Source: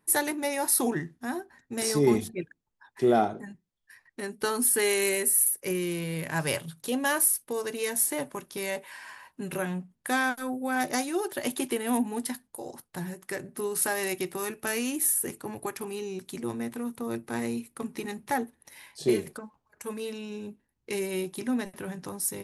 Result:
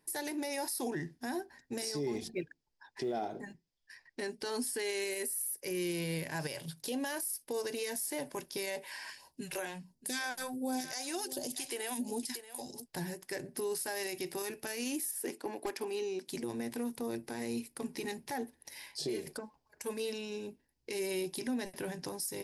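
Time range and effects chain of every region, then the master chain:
0:01.92–0:05.10: low-pass filter 7,900 Hz + floating-point word with a short mantissa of 6 bits
0:09.10–0:12.86: dynamic equaliser 7,300 Hz, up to +5 dB, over −50 dBFS, Q 1.4 + all-pass phaser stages 2, 1.4 Hz, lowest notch 130–2,000 Hz + single-tap delay 632 ms −18 dB
0:15.11–0:16.28: high-pass filter 220 Hz 24 dB per octave + high-shelf EQ 6,400 Hz −11 dB + gain into a clipping stage and back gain 28 dB
whole clip: thirty-one-band graphic EQ 100 Hz −10 dB, 200 Hz −8 dB, 1,250 Hz −11 dB, 5,000 Hz +10 dB; downward compressor, threshold −29 dBFS; brickwall limiter −27.5 dBFS

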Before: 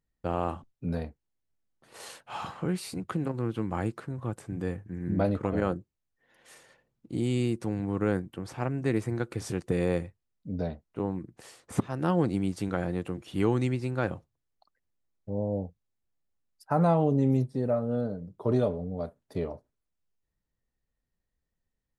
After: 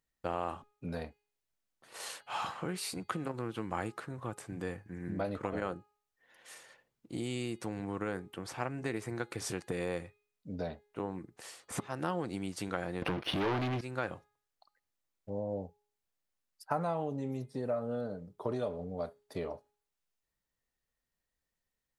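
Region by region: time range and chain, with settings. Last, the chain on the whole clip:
0:13.02–0:13.81: leveller curve on the samples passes 5 + moving average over 6 samples + highs frequency-modulated by the lows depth 0.25 ms
whole clip: downward compressor, threshold −27 dBFS; low-shelf EQ 410 Hz −11.5 dB; hum removal 415.3 Hz, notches 11; level +2.5 dB

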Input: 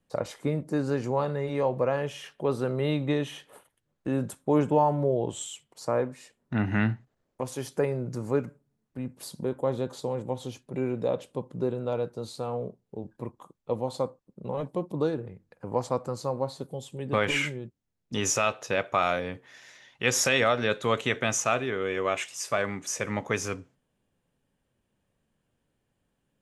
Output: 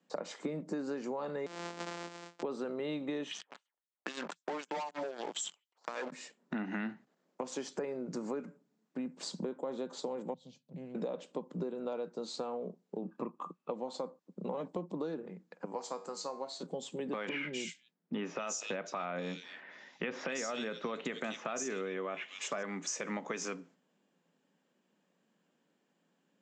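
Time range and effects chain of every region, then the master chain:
0:01.46–0:02.43: samples sorted by size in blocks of 256 samples + high-pass filter 310 Hz + downward compressor 2 to 1, threshold −47 dBFS
0:03.31–0:06.12: auto-filter band-pass sine 3.9 Hz 690–6,400 Hz + leveller curve on the samples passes 5 + downward compressor 4 to 1, threshold −35 dBFS
0:10.34–0:10.95: drawn EQ curve 140 Hz 0 dB, 360 Hz −28 dB, 540 Hz −15 dB, 1,300 Hz −30 dB, 4,200 Hz −12 dB, 6,700 Hz −19 dB + highs frequency-modulated by the lows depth 0.21 ms
0:13.02–0:13.71: spectral tilt −2 dB per octave + hollow resonant body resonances 1,200/2,600 Hz, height 14 dB, ringing for 20 ms
0:15.65–0:16.63: linear-phase brick-wall low-pass 9,300 Hz + spectral tilt +2.5 dB per octave + tuned comb filter 96 Hz, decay 0.36 s, mix 70%
0:17.29–0:22.63: low-pass that shuts in the quiet parts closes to 2,200 Hz, open at −22 dBFS + low-shelf EQ 190 Hz +8.5 dB + multiband delay without the direct sound lows, highs 240 ms, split 3,100 Hz
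whole clip: Chebyshev band-pass filter 170–7,600 Hz, order 5; brickwall limiter −20.5 dBFS; downward compressor 6 to 1, threshold −38 dBFS; level +3 dB

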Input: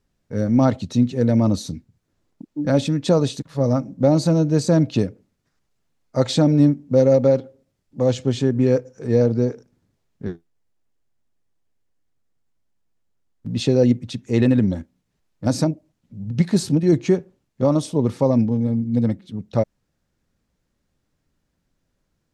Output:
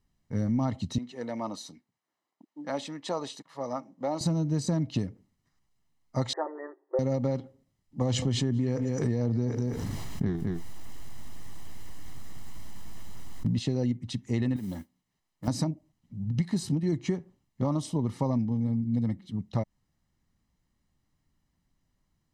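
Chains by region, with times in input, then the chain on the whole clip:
0:00.98–0:04.21: high-pass filter 550 Hz + high-shelf EQ 3,000 Hz −7.5 dB
0:06.33–0:06.99: linear-phase brick-wall band-pass 330–2,000 Hz + comb filter 7.5 ms, depth 64%
0:08.01–0:13.59: single-tap delay 210 ms −21 dB + envelope flattener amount 70%
0:14.56–0:15.48: low-shelf EQ 160 Hz −12 dB + downward compressor 5 to 1, threshold −25 dBFS + noise that follows the level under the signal 23 dB
whole clip: comb filter 1 ms, depth 52%; downward compressor, threshold −19 dBFS; level −5 dB

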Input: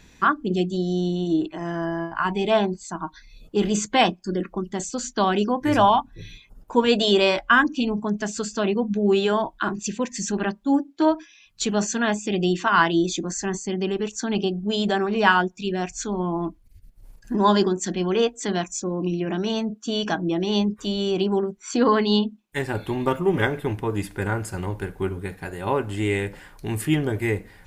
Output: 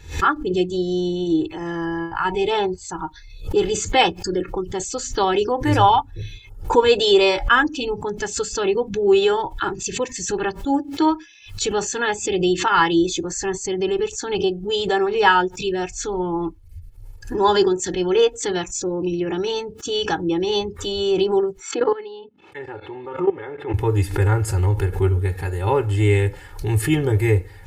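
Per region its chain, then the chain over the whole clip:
0:21.71–0:23.74: output level in coarse steps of 17 dB + band-pass filter 270–2,300 Hz
whole clip: parametric band 84 Hz +13 dB 0.92 octaves; comb filter 2.3 ms, depth 88%; background raised ahead of every attack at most 130 dB per second

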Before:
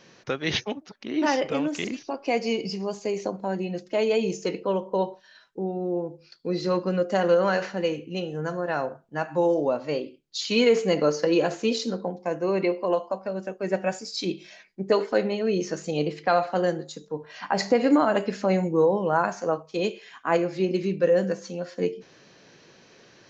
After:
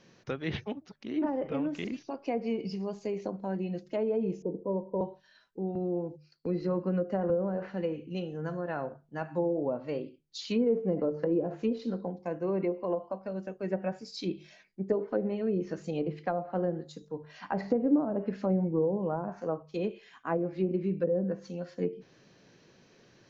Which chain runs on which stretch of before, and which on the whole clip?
0:04.42–0:05.01: Butterworth low-pass 1,000 Hz 72 dB per octave + notch filter 780 Hz, Q 9.6
0:05.75–0:07.30: notch filter 3,500 Hz, Q 5.1 + noise gate −45 dBFS, range −11 dB + multiband upward and downward compressor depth 40%
whole clip: treble cut that deepens with the level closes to 580 Hz, closed at −17.5 dBFS; low-shelf EQ 260 Hz +10 dB; mains-hum notches 50/100/150 Hz; level −9 dB

